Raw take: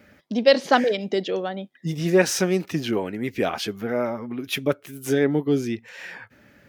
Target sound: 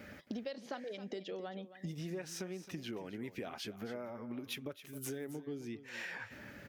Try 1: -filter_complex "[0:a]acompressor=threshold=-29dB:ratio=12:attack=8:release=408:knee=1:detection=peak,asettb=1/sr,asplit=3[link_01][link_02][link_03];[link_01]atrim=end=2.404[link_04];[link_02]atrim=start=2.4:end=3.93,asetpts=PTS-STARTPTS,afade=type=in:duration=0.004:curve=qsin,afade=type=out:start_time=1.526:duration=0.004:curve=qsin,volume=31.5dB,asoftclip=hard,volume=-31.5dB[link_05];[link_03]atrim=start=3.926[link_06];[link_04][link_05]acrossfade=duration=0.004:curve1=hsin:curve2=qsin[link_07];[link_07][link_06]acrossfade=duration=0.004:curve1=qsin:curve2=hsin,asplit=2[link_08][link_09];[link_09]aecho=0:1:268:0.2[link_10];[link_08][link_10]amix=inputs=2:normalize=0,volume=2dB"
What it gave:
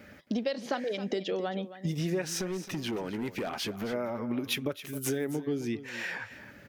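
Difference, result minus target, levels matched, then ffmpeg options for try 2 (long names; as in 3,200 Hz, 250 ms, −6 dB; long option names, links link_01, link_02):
downward compressor: peak gain reduction −11 dB
-filter_complex "[0:a]acompressor=threshold=-41dB:ratio=12:attack=8:release=408:knee=1:detection=peak,asettb=1/sr,asplit=3[link_01][link_02][link_03];[link_01]atrim=end=2.404[link_04];[link_02]atrim=start=2.4:end=3.93,asetpts=PTS-STARTPTS,afade=type=in:duration=0.004:curve=qsin,afade=type=out:start_time=1.526:duration=0.004:curve=qsin,volume=31.5dB,asoftclip=hard,volume=-31.5dB[link_05];[link_03]atrim=start=3.926[link_06];[link_04][link_05]acrossfade=duration=0.004:curve1=hsin:curve2=qsin[link_07];[link_07][link_06]acrossfade=duration=0.004:curve1=qsin:curve2=hsin,asplit=2[link_08][link_09];[link_09]aecho=0:1:268:0.2[link_10];[link_08][link_10]amix=inputs=2:normalize=0,volume=2dB"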